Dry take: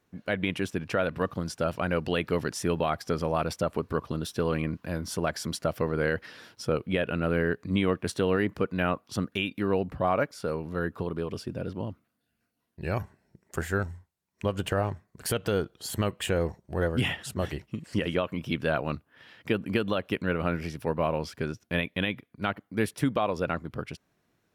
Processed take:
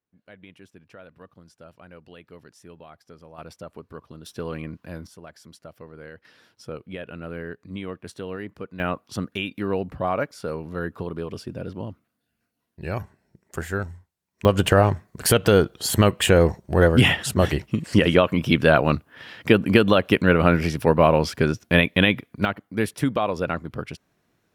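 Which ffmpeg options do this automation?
ffmpeg -i in.wav -af "asetnsamples=nb_out_samples=441:pad=0,asendcmd='3.38 volume volume -11dB;4.26 volume volume -4dB;5.07 volume volume -15dB;6.25 volume volume -8dB;8.8 volume volume 1dB;14.45 volume volume 11dB;22.45 volume volume 3.5dB',volume=-18.5dB" out.wav

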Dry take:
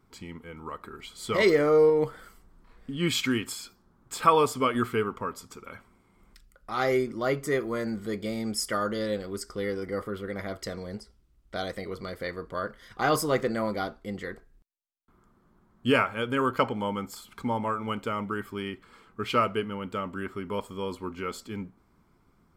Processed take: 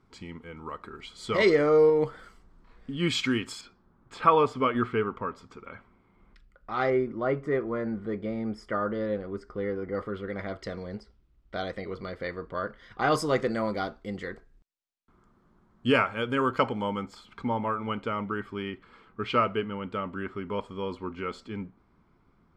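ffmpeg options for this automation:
ffmpeg -i in.wav -af "asetnsamples=nb_out_samples=441:pad=0,asendcmd='3.61 lowpass f 2900;6.9 lowpass f 1700;9.95 lowpass f 3700;13.12 lowpass f 6600;17.03 lowpass f 3800',lowpass=6000" out.wav

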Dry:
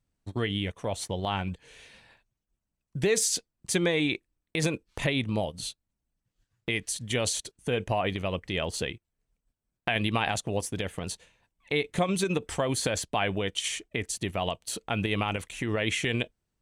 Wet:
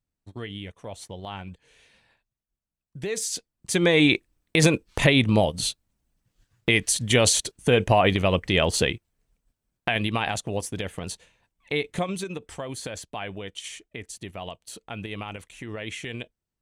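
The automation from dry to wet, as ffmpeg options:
ffmpeg -i in.wav -af "volume=9dB,afade=type=in:start_time=3.01:duration=0.69:silence=0.421697,afade=type=in:start_time=3.7:duration=0.34:silence=0.398107,afade=type=out:start_time=8.86:duration=1.24:silence=0.398107,afade=type=out:start_time=11.85:duration=0.45:silence=0.421697" out.wav

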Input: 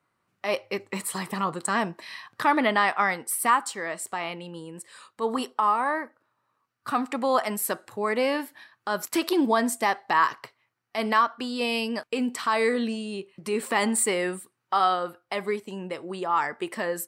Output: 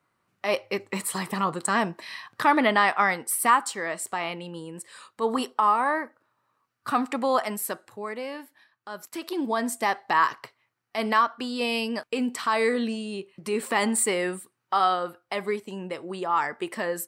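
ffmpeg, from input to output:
ffmpeg -i in.wav -af "volume=11.5dB,afade=type=out:start_time=7.03:duration=1.19:silence=0.266073,afade=type=in:start_time=9.18:duration=0.8:silence=0.316228" out.wav

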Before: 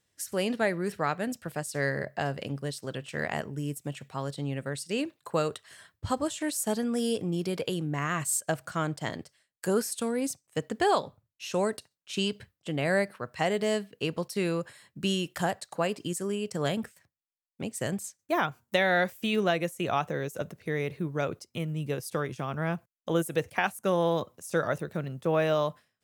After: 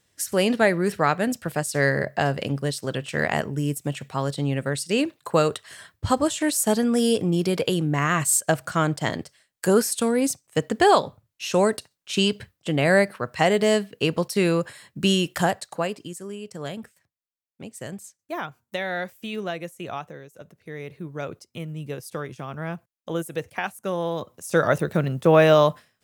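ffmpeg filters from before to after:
ffmpeg -i in.wav -af "volume=31dB,afade=type=out:start_time=15.34:duration=0.77:silence=0.251189,afade=type=out:start_time=19.91:duration=0.37:silence=0.375837,afade=type=in:start_time=20.28:duration=1.09:silence=0.266073,afade=type=in:start_time=24.16:duration=0.7:silence=0.266073" out.wav

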